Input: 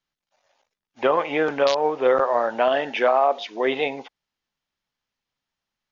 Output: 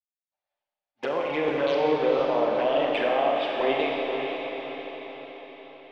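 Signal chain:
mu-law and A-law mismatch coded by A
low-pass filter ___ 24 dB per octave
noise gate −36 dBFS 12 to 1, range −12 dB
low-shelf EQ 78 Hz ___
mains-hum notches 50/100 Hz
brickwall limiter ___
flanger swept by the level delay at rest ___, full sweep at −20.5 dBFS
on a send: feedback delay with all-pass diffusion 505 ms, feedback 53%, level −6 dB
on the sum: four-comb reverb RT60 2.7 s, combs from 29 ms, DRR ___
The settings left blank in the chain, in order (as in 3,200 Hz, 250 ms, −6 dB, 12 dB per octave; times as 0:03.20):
4,300 Hz, −2.5 dB, −15.5 dBFS, 10.3 ms, −0.5 dB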